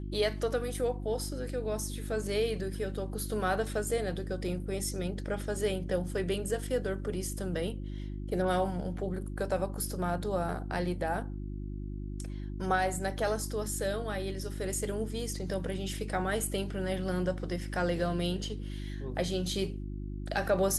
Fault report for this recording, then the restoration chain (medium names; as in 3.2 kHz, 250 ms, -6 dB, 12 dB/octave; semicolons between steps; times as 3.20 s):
hum 50 Hz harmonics 7 -38 dBFS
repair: de-hum 50 Hz, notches 7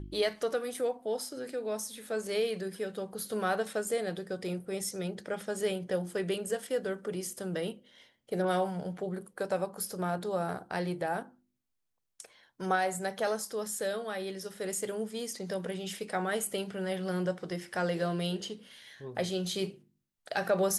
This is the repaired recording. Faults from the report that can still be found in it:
nothing left